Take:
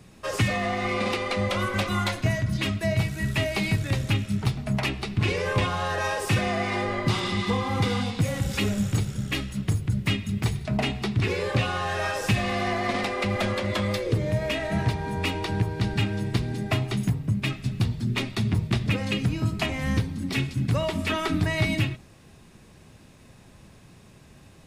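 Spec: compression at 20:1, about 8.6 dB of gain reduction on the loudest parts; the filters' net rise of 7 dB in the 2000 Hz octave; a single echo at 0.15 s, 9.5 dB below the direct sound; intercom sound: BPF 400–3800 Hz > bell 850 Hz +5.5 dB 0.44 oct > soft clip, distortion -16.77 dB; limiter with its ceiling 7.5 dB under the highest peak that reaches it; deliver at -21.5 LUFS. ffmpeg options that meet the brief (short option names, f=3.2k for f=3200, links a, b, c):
-af "equalizer=f=2k:t=o:g=8.5,acompressor=threshold=-26dB:ratio=20,alimiter=limit=-22.5dB:level=0:latency=1,highpass=400,lowpass=3.8k,equalizer=f=850:t=o:w=0.44:g=5.5,aecho=1:1:150:0.335,asoftclip=threshold=-27dB,volume=13.5dB"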